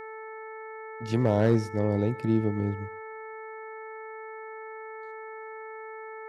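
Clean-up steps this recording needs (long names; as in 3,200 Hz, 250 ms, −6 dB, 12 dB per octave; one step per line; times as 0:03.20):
clipped peaks rebuilt −12.5 dBFS
hum removal 439.4 Hz, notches 5
echo removal 116 ms −23.5 dB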